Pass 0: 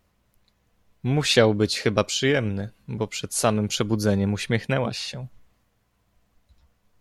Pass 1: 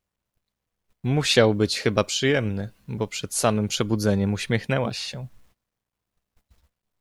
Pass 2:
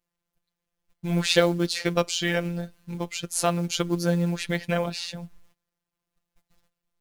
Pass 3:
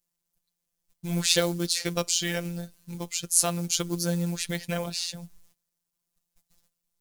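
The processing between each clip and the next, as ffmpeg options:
-af "acrusher=bits=10:mix=0:aa=0.000001,agate=range=-17dB:threshold=-57dB:ratio=16:detection=peak"
-af "acrusher=bits=7:mode=log:mix=0:aa=0.000001,afftfilt=real='hypot(re,im)*cos(PI*b)':imag='0':win_size=1024:overlap=0.75,volume=1.5dB"
-af "bass=f=250:g=3,treble=f=4k:g=14,volume=-6dB"

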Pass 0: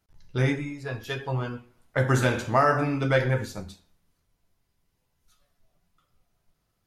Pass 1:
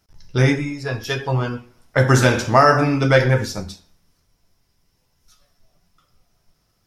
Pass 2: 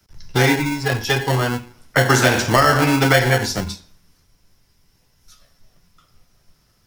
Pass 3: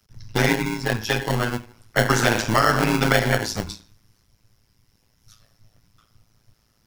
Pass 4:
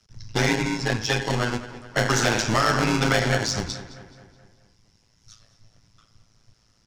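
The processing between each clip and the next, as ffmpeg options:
-af "equalizer=f=5.4k:w=5.3:g=11.5,volume=8dB"
-filter_complex "[0:a]acrossover=split=290|1700[a][b][c];[a]acompressor=threshold=-26dB:ratio=4[d];[b]acompressor=threshold=-19dB:ratio=4[e];[c]acompressor=threshold=-25dB:ratio=4[f];[d][e][f]amix=inputs=3:normalize=0,acrossover=split=140|760|2100[g][h][i][j];[h]acrusher=samples=36:mix=1:aa=0.000001[k];[g][k][i][j]amix=inputs=4:normalize=0,volume=6dB"
-af "tremolo=f=110:d=0.919"
-filter_complex "[0:a]lowpass=f=6.5k:t=q:w=1.6,asoftclip=type=tanh:threshold=-13dB,asplit=2[a][b];[b]adelay=213,lowpass=f=4.1k:p=1,volume=-14dB,asplit=2[c][d];[d]adelay=213,lowpass=f=4.1k:p=1,volume=0.55,asplit=2[e][f];[f]adelay=213,lowpass=f=4.1k:p=1,volume=0.55,asplit=2[g][h];[h]adelay=213,lowpass=f=4.1k:p=1,volume=0.55,asplit=2[i][j];[j]adelay=213,lowpass=f=4.1k:p=1,volume=0.55,asplit=2[k][l];[l]adelay=213,lowpass=f=4.1k:p=1,volume=0.55[m];[a][c][e][g][i][k][m]amix=inputs=7:normalize=0"

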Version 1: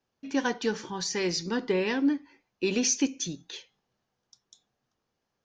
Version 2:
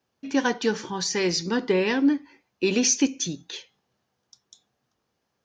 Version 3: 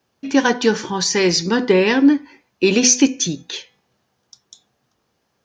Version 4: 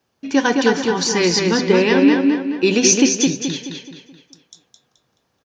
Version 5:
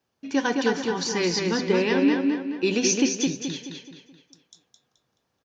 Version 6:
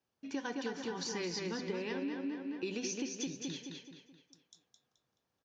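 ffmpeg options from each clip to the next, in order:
-af "highpass=52,volume=4.5dB"
-af "bandreject=f=248.2:t=h:w=4,bandreject=f=496.4:t=h:w=4,bandreject=f=744.6:t=h:w=4,bandreject=f=992.8:t=h:w=4,bandreject=f=1.241k:t=h:w=4,bandreject=f=1.4892k:t=h:w=4,bandreject=f=1.7374k:t=h:w=4,bandreject=f=1.9856k:t=h:w=4,bandreject=f=2.2338k:t=h:w=4,bandreject=f=2.482k:t=h:w=4,volume=8dB"
-filter_complex "[0:a]asplit=2[a][b];[b]adelay=214,lowpass=f=4.9k:p=1,volume=-3dB,asplit=2[c][d];[d]adelay=214,lowpass=f=4.9k:p=1,volume=0.44,asplit=2[e][f];[f]adelay=214,lowpass=f=4.9k:p=1,volume=0.44,asplit=2[g][h];[h]adelay=214,lowpass=f=4.9k:p=1,volume=0.44,asplit=2[i][j];[j]adelay=214,lowpass=f=4.9k:p=1,volume=0.44,asplit=2[k][l];[l]adelay=214,lowpass=f=4.9k:p=1,volume=0.44[m];[a][c][e][g][i][k][m]amix=inputs=7:normalize=0,volume=-1dB"
-filter_complex "[0:a]acrossover=split=7500[a][b];[b]acompressor=threshold=-42dB:ratio=4:attack=1:release=60[c];[a][c]amix=inputs=2:normalize=0,volume=-7.5dB"
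-af "acompressor=threshold=-26dB:ratio=6,volume=-9dB"

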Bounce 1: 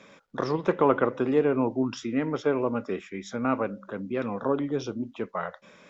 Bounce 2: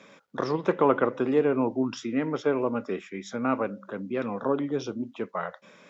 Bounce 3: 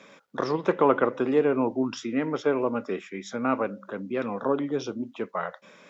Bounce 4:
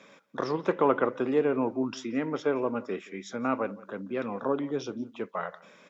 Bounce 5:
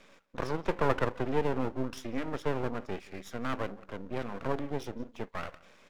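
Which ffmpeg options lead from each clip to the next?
-af "highpass=120"
-af "lowshelf=f=160:g=-5,volume=1.5dB"
-filter_complex "[0:a]asplit=2[a][b];[b]adelay=174.9,volume=-21dB,highshelf=f=4k:g=-3.94[c];[a][c]amix=inputs=2:normalize=0,volume=-3dB"
-af "aeval=exprs='max(val(0),0)':c=same"

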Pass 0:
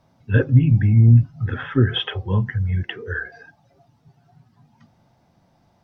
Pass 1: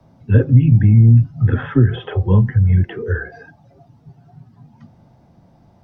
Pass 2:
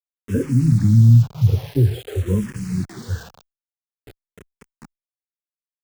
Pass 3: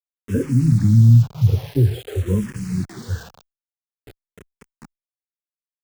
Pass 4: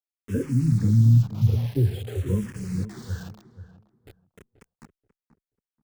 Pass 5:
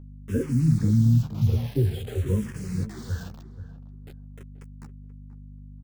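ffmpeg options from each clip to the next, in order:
-filter_complex "[0:a]acrossover=split=130|760[a][b][c];[c]alimiter=limit=-22dB:level=0:latency=1:release=25[d];[a][b][d]amix=inputs=3:normalize=0,tiltshelf=f=840:g=5.5,acrossover=split=140|1900[e][f][g];[e]acompressor=threshold=-18dB:ratio=4[h];[f]acompressor=threshold=-20dB:ratio=4[i];[g]acompressor=threshold=-44dB:ratio=4[j];[h][i][j]amix=inputs=3:normalize=0,volume=5.5dB"
-filter_complex "[0:a]equalizer=f=1.6k:t=o:w=2:g=-11,acrusher=bits=5:mix=0:aa=0.000001,asplit=2[a][b];[b]afreqshift=-0.48[c];[a][c]amix=inputs=2:normalize=1"
-af anull
-filter_complex "[0:a]asplit=2[a][b];[b]adelay=482,lowpass=f=1k:p=1,volume=-12dB,asplit=2[c][d];[d]adelay=482,lowpass=f=1k:p=1,volume=0.23,asplit=2[e][f];[f]adelay=482,lowpass=f=1k:p=1,volume=0.23[g];[a][c][e][g]amix=inputs=4:normalize=0,volume=-5.5dB"
-filter_complex "[0:a]aeval=exprs='val(0)+0.00891*(sin(2*PI*50*n/s)+sin(2*PI*2*50*n/s)/2+sin(2*PI*3*50*n/s)/3+sin(2*PI*4*50*n/s)/4+sin(2*PI*5*50*n/s)/5)':c=same,asplit=2[a][b];[b]adelay=13,volume=-9dB[c];[a][c]amix=inputs=2:normalize=0"

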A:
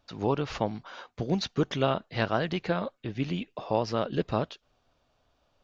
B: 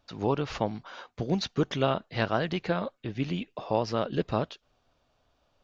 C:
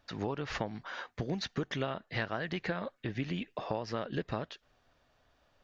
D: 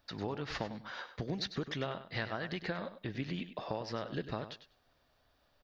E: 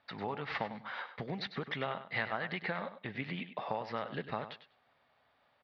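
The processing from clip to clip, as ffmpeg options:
-af anull
-af "equalizer=f=1.8k:t=o:w=0.48:g=8.5,acompressor=threshold=-31dB:ratio=6"
-af "aexciter=amount=1.8:drive=1.8:freq=3.8k,aecho=1:1:99|198:0.266|0.0452,volume=-3dB"
-af "highpass=140,equalizer=f=320:t=q:w=4:g=-7,equalizer=f=830:t=q:w=4:g=6,equalizer=f=1.2k:t=q:w=4:g=4,equalizer=f=2.1k:t=q:w=4:g=8,lowpass=f=3.9k:w=0.5412,lowpass=f=3.9k:w=1.3066"

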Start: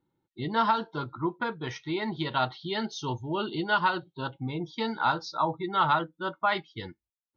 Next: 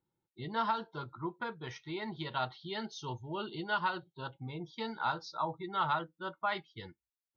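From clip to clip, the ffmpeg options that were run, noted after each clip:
-af "equalizer=f=280:t=o:w=0.3:g=-8,volume=-7.5dB"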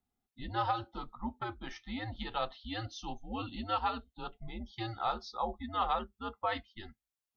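-af "afreqshift=-110"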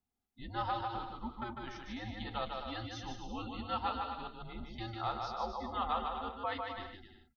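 -af "aecho=1:1:150|255|328.5|380|416:0.631|0.398|0.251|0.158|0.1,volume=-4dB"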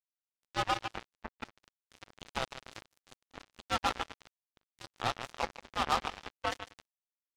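-af "acrusher=bits=4:mix=0:aa=0.5,volume=4.5dB"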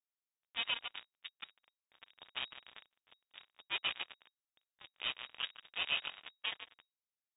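-af "lowpass=f=3.2k:t=q:w=0.5098,lowpass=f=3.2k:t=q:w=0.6013,lowpass=f=3.2k:t=q:w=0.9,lowpass=f=3.2k:t=q:w=2.563,afreqshift=-3800,volume=-5.5dB"

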